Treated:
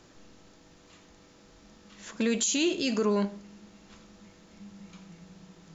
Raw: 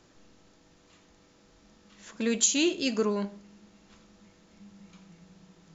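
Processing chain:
brickwall limiter −22 dBFS, peak gain reduction 11.5 dB
level +4 dB

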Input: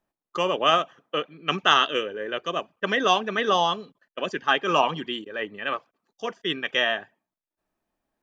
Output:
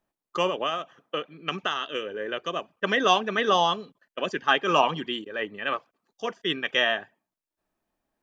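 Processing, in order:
0:00.47–0:02.73: downward compressor 6 to 1, threshold −25 dBFS, peak gain reduction 12.5 dB

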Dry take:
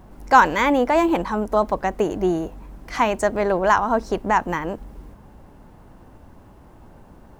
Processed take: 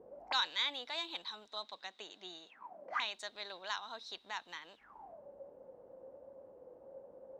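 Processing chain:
0:01.47–0:02.93: elliptic band-pass filter 170–8,500 Hz
envelope filter 420–3,800 Hz, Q 20, up, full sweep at −22.5 dBFS
level +12 dB

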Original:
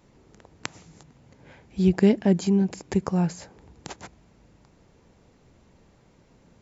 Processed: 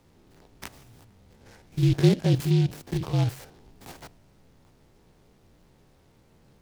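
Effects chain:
spectrum averaged block by block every 50 ms
frequency shifter −44 Hz
short delay modulated by noise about 3,200 Hz, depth 0.068 ms

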